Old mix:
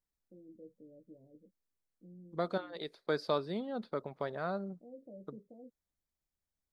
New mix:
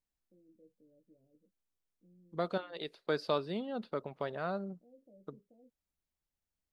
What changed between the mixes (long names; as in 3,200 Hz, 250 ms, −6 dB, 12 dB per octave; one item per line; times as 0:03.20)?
first voice −10.0 dB
master: add parametric band 2,800 Hz +11.5 dB 0.22 octaves